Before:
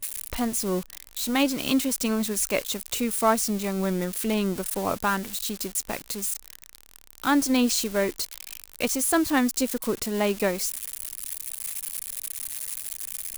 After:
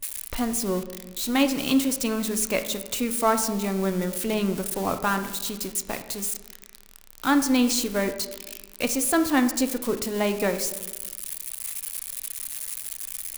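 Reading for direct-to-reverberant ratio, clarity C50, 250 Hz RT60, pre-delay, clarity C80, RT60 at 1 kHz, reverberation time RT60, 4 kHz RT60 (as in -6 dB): 8.0 dB, 11.0 dB, 1.6 s, 3 ms, 13.0 dB, 1.1 s, 1.2 s, 0.70 s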